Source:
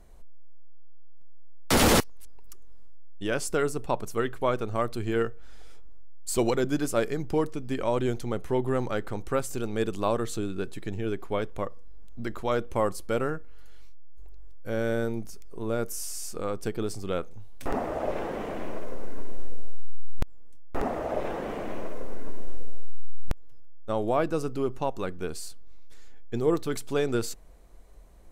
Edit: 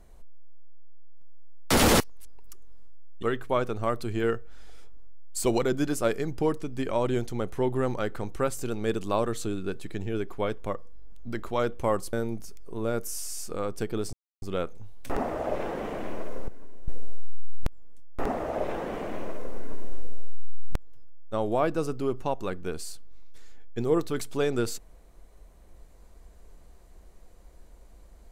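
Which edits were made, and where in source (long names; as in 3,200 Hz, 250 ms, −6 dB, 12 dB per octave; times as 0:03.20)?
0:03.23–0:04.15: remove
0:13.05–0:14.98: remove
0:16.98: splice in silence 0.29 s
0:19.04–0:19.44: clip gain −11 dB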